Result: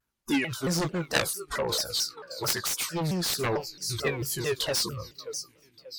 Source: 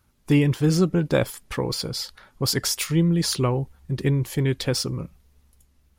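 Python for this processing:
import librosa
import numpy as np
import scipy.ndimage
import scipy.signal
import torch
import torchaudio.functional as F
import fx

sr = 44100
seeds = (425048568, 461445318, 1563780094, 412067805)

p1 = fx.rattle_buzz(x, sr, strikes_db=-27.0, level_db=-28.0)
p2 = fx.high_shelf(p1, sr, hz=3900.0, db=7.0, at=(0.81, 1.31))
p3 = p2 + fx.echo_split(p2, sr, split_hz=320.0, low_ms=404, high_ms=585, feedback_pct=52, wet_db=-15, dry=0)
p4 = fx.noise_reduce_blind(p3, sr, reduce_db=19)
p5 = fx.low_shelf(p4, sr, hz=290.0, db=-10.5)
p6 = fx.doubler(p5, sr, ms=18.0, db=-6.5)
p7 = fx.cheby_harmonics(p6, sr, harmonics=(3, 7), levels_db=(-8, -25), full_scale_db=-8.5)
p8 = fx.rider(p7, sr, range_db=4, speed_s=0.5)
p9 = fx.vibrato_shape(p8, sr, shape='saw_down', rate_hz=4.5, depth_cents=250.0)
y = F.gain(torch.from_numpy(p9), 7.0).numpy()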